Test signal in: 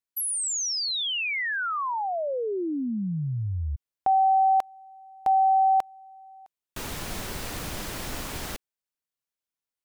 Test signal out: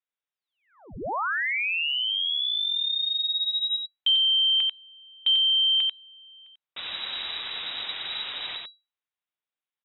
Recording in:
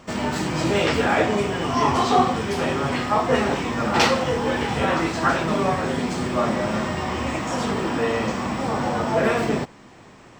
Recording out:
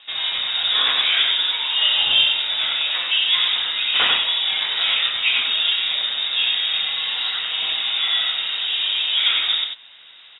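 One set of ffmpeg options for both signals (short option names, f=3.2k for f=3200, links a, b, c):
-af "aecho=1:1:92:0.631,lowpass=f=3.3k:t=q:w=0.5098,lowpass=f=3.3k:t=q:w=0.6013,lowpass=f=3.3k:t=q:w=0.9,lowpass=f=3.3k:t=q:w=2.563,afreqshift=-3900" -ar 48000 -c:a libvorbis -b:a 192k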